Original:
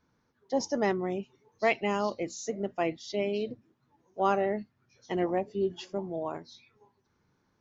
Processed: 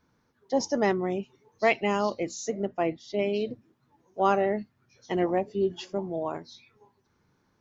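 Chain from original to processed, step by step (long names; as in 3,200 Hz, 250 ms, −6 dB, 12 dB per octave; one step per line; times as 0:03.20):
0:02.65–0:03.19: high-shelf EQ 2,400 Hz −9.5 dB
level +3 dB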